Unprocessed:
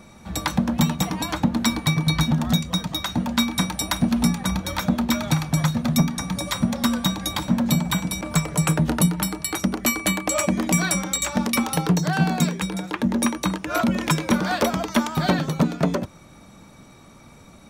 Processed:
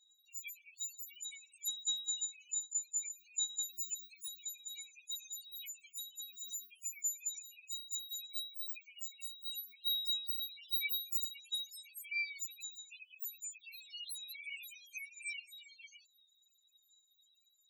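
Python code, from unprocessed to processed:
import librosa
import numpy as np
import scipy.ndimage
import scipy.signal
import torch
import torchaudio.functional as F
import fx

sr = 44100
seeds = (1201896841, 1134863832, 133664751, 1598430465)

y = fx.partial_stretch(x, sr, pct=123)
y = fx.brickwall_highpass(y, sr, low_hz=2200.0)
y = fx.spec_topn(y, sr, count=4)
y = F.gain(torch.from_numpy(y), -3.5).numpy()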